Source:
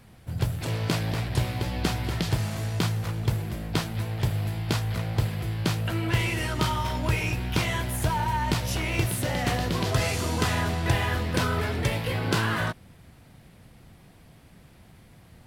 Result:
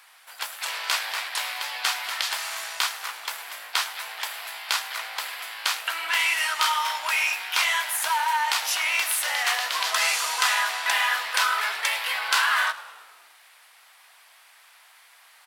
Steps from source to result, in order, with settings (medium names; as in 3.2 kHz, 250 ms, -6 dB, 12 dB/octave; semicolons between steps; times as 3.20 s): high-pass 960 Hz 24 dB/octave; on a send: frequency-shifting echo 105 ms, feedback 61%, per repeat -50 Hz, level -18 dB; on the sum: trim +8 dB